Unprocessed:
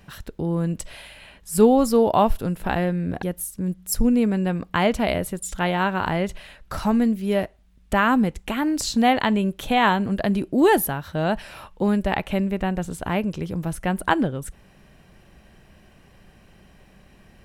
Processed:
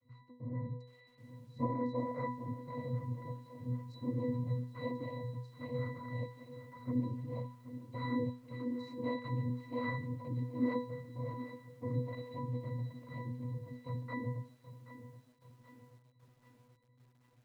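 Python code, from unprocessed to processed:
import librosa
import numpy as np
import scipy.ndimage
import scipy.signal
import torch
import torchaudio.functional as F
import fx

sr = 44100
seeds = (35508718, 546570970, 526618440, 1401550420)

y = fx.noise_vocoder(x, sr, seeds[0], bands=6)
y = fx.octave_resonator(y, sr, note='B', decay_s=0.43)
y = fx.echo_crushed(y, sr, ms=777, feedback_pct=55, bits=10, wet_db=-13)
y = F.gain(torch.from_numpy(y), -1.5).numpy()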